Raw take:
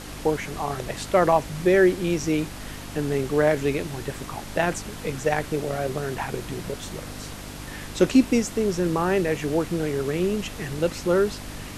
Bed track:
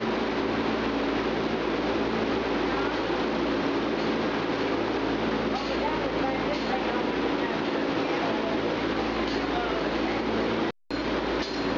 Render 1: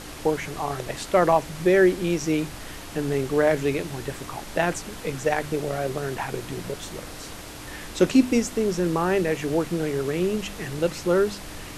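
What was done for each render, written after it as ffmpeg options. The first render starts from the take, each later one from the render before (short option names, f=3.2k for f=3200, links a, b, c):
-af "bandreject=f=50:t=h:w=4,bandreject=f=100:t=h:w=4,bandreject=f=150:t=h:w=4,bandreject=f=200:t=h:w=4,bandreject=f=250:t=h:w=4"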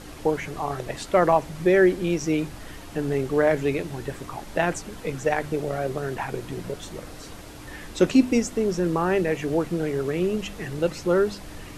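-af "afftdn=nr=6:nf=-39"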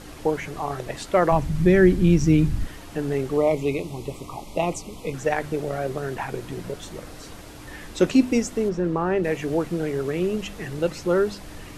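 -filter_complex "[0:a]asplit=3[a][b][c];[a]afade=t=out:st=1.31:d=0.02[d];[b]asubboost=boost=11.5:cutoff=200,afade=t=in:st=1.31:d=0.02,afade=t=out:st=2.65:d=0.02[e];[c]afade=t=in:st=2.65:d=0.02[f];[d][e][f]amix=inputs=3:normalize=0,asettb=1/sr,asplit=3[g][h][i];[g]atrim=end=3.374[j];[h]atrim=start=3.37:end=5.14,asetpts=PTS-STARTPTS,afade=t=in:d=0.004:c=qsin,afade=t=out:st=1.766:d=0.004:c=qsin,asuperstop=centerf=1600:order=8:qfactor=1.9[k];[i]atrim=start=5.136[l];[j][k]acrossfade=d=0.004:c1=hsin:c2=qsin[m];[m][l]acrossfade=d=0.004:c1=qsin:c2=hsin,asplit=3[n][o][p];[n]afade=t=out:st=8.68:d=0.02[q];[o]lowpass=f=1.8k:p=1,afade=t=in:st=8.68:d=0.02,afade=t=out:st=9.23:d=0.02[r];[p]afade=t=in:st=9.23:d=0.02[s];[q][r][s]amix=inputs=3:normalize=0"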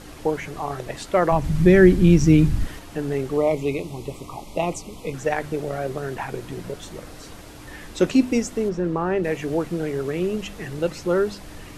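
-filter_complex "[0:a]asplit=3[a][b][c];[a]atrim=end=1.442[d];[b]atrim=start=1.438:end=2.792,asetpts=PTS-STARTPTS,volume=3dB[e];[c]atrim=start=2.788[f];[d][e]acrossfade=d=0.004:c1=hsin:c2=hsin[g];[g][f]acrossfade=d=0.004:c1=hsin:c2=hsin"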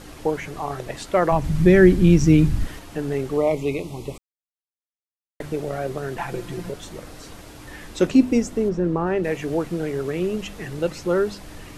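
-filter_complex "[0:a]asettb=1/sr,asplit=3[a][b][c];[a]atrim=end=6.174[d];[b]atrim=start=6.17:end=6.7,asetpts=PTS-STARTPTS,afade=t=in:d=0.004:c=qsin,afade=t=out:st=0.526:d=0.004:c=qsin,aecho=1:1:5.8:0.65,atrim=end_sample=23373[e];[c]atrim=start=6.696[f];[d][e]acrossfade=d=0.004:c1=hsin:c2=qsin[g];[g][f]acrossfade=d=0.004:c1=qsin:c2=hsin,asettb=1/sr,asplit=3[h][i][j];[h]atrim=end=8.074[k];[i]atrim=start=8.07:end=9.07,asetpts=PTS-STARTPTS,afade=t=in:d=0.004:c=qsin,afade=t=out:st=0.996:d=0.004:c=qsin,tiltshelf=f=740:g=3[l];[j]atrim=start=9.066[m];[k][l]acrossfade=d=0.004:c1=hsin:c2=qsin[n];[n][m]acrossfade=d=0.004:c1=qsin:c2=hsin,asplit=3[o][p][q];[o]atrim=end=4.18,asetpts=PTS-STARTPTS,afade=t=out:st=4.176:d=0.004:c=hsin[r];[p]atrim=start=4.18:end=5.4,asetpts=PTS-STARTPTS,volume=0[s];[q]atrim=start=5.4,asetpts=PTS-STARTPTS,afade=t=in:d=0.004:c=hsin[t];[r][s][t]concat=n=3:v=0:a=1"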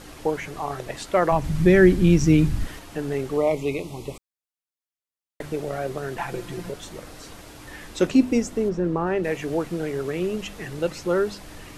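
-af "lowshelf=f=420:g=-3"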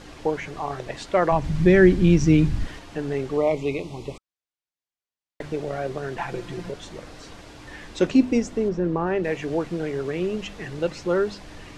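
-af "lowpass=6.2k,bandreject=f=1.3k:w=26"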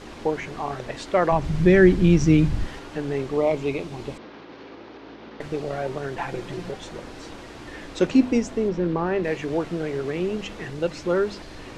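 -filter_complex "[1:a]volume=-15.5dB[a];[0:a][a]amix=inputs=2:normalize=0"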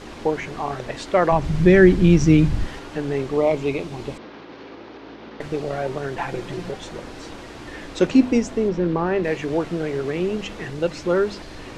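-af "volume=2.5dB,alimiter=limit=-2dB:level=0:latency=1"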